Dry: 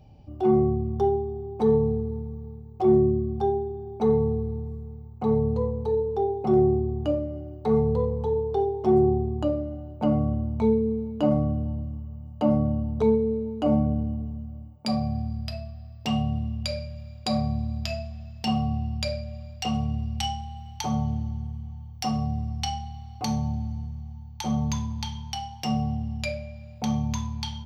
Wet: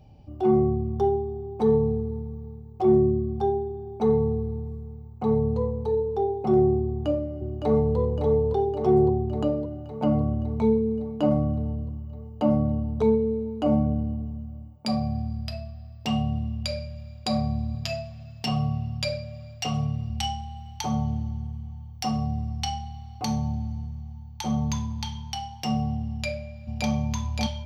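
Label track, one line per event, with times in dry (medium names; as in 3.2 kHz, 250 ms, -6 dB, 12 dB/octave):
6.850000	7.970000	echo throw 560 ms, feedback 70%, level -6.5 dB
17.740000	20.100000	comb 7.2 ms
26.100000	26.890000	echo throw 570 ms, feedback 70%, level -2 dB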